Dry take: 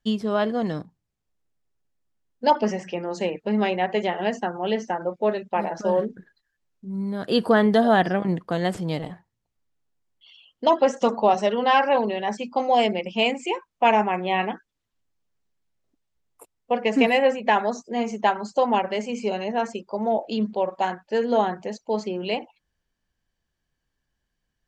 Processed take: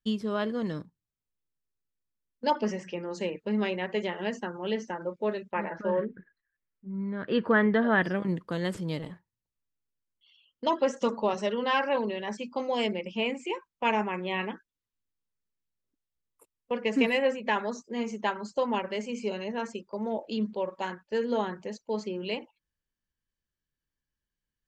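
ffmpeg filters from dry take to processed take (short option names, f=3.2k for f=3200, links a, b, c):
-filter_complex "[0:a]asettb=1/sr,asplit=3[a][b][c];[a]atrim=end=5.514[d];[b]atrim=start=5.51:end=8.02,asetpts=PTS-STARTPTS,afade=t=in:d=0.004:c=qsin,afade=t=out:st=2.506:d=0.004:c=qsin,lowpass=f=2k:t=q:w=2[e];[c]atrim=start=8.016[f];[d][e]acrossfade=d=0.004:c1=hsin:c2=qsin[g];[g][f]acrossfade=d=0.004:c1=qsin:c2=hsin,asettb=1/sr,asplit=3[h][i][j];[h]atrim=end=12.934[k];[i]atrim=start=12.93:end=13.5,asetpts=PTS-STARTPTS,afade=t=in:d=0.004:c=qsin,afade=t=out:st=0.566:d=0.004:c=qsin,acrossover=split=2900[l][m];[m]acompressor=threshold=-43dB:ratio=4:attack=1:release=60[n];[l][n]amix=inputs=2:normalize=0[o];[j]atrim=start=13.496[p];[k][o]acrossfade=d=0.004:c1=hsin:c2=qsin[q];[q][p]acrossfade=d=0.004:c1=qsin:c2=hsin,equalizer=f=730:t=o:w=0.28:g=-13.5,agate=range=-6dB:threshold=-41dB:ratio=16:detection=peak,volume=-5dB"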